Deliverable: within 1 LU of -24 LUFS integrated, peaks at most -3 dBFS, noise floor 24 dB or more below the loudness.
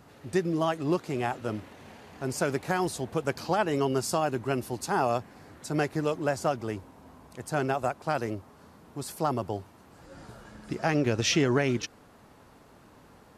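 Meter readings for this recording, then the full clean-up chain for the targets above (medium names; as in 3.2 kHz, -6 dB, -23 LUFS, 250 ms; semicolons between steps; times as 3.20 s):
loudness -29.5 LUFS; peak level -12.5 dBFS; loudness target -24.0 LUFS
-> trim +5.5 dB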